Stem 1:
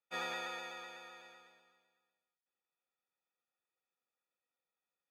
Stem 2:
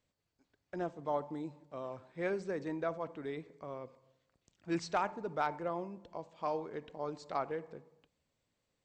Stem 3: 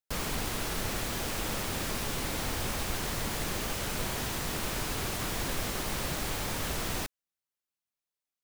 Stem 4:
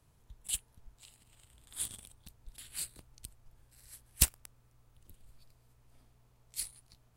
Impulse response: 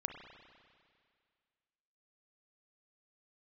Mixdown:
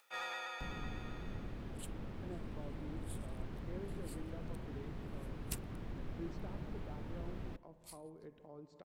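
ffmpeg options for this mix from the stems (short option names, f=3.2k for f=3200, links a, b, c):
-filter_complex "[0:a]lowshelf=f=380:g=-11.5,volume=35.5dB,asoftclip=hard,volume=-35.5dB,equalizer=f=130:w=0.38:g=-11,volume=3dB[a];[1:a]acrossover=split=400[b][c];[c]acompressor=threshold=-50dB:ratio=6[d];[b][d]amix=inputs=2:normalize=0,adelay=1500,volume=-11dB,asplit=2[e][f];[f]volume=-6dB[g];[2:a]acrossover=split=4100[h][i];[i]acompressor=threshold=-54dB:ratio=4:attack=1:release=60[j];[h][j]amix=inputs=2:normalize=0,acrossover=split=370[k][l];[l]acompressor=threshold=-50dB:ratio=3[m];[k][m]amix=inputs=2:normalize=0,adelay=500,volume=-9dB,asplit=2[n][o];[o]volume=-13.5dB[p];[3:a]adelay=1300,volume=-11dB[q];[4:a]atrim=start_sample=2205[r];[g][p]amix=inputs=2:normalize=0[s];[s][r]afir=irnorm=-1:irlink=0[t];[a][e][n][q][t]amix=inputs=5:normalize=0,highshelf=f=2.2k:g=-8,acompressor=mode=upward:threshold=-51dB:ratio=2.5"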